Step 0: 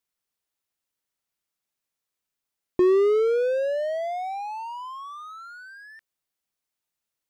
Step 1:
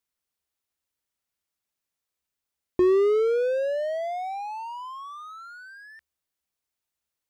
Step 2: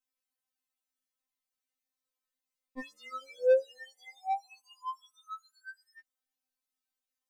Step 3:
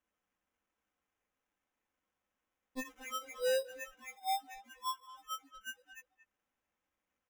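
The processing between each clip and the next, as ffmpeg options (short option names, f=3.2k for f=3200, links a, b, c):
-af "equalizer=f=71:w=6.6:g=13.5,volume=-1dB"
-af "afftfilt=real='re*3.46*eq(mod(b,12),0)':imag='im*3.46*eq(mod(b,12),0)':win_size=2048:overlap=0.75,volume=-3.5dB"
-filter_complex "[0:a]acrusher=samples=10:mix=1:aa=0.000001,asoftclip=type=tanh:threshold=-30dB,asplit=2[a][b];[b]adelay=230,highpass=300,lowpass=3.4k,asoftclip=type=hard:threshold=-39dB,volume=-12dB[c];[a][c]amix=inputs=2:normalize=0,volume=1.5dB"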